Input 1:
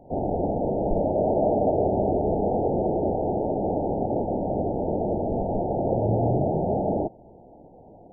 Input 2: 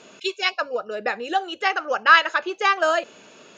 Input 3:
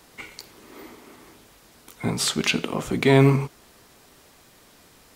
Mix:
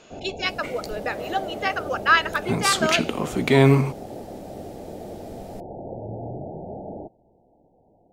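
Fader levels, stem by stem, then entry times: −11.0, −3.5, +0.5 decibels; 0.00, 0.00, 0.45 seconds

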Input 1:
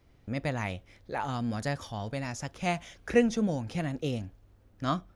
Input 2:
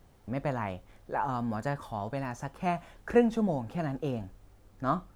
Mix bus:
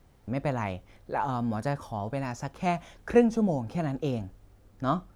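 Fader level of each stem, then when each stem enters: −5.5, −1.5 decibels; 0.00, 0.00 seconds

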